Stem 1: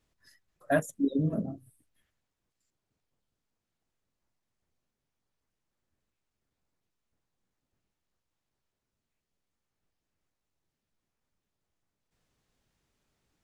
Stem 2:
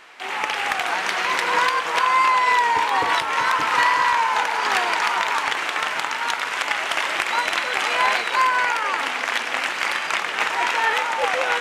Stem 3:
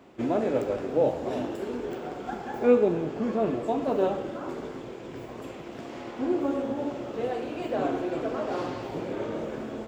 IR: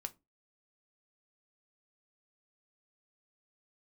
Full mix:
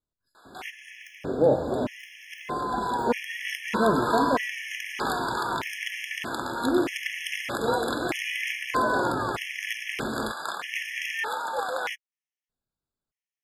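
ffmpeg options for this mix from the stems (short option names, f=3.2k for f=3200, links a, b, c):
-filter_complex "[0:a]volume=-13.5dB,asplit=2[a][b];[1:a]equalizer=f=12k:t=o:w=0.52:g=12,adelay=350,volume=-7dB,asplit=2[c][d];[d]volume=-22.5dB[e];[2:a]lowshelf=f=150:g=5.5,adelay=450,volume=2.5dB[f];[b]apad=whole_len=527425[g];[c][g]sidechaincompress=threshold=-59dB:ratio=10:attack=16:release=1400[h];[3:a]atrim=start_sample=2205[i];[e][i]afir=irnorm=-1:irlink=0[j];[a][h][f][j]amix=inputs=4:normalize=0,afftfilt=real='re*gt(sin(2*PI*0.8*pts/sr)*(1-2*mod(floor(b*sr/1024/1700),2)),0)':imag='im*gt(sin(2*PI*0.8*pts/sr)*(1-2*mod(floor(b*sr/1024/1700),2)),0)':win_size=1024:overlap=0.75"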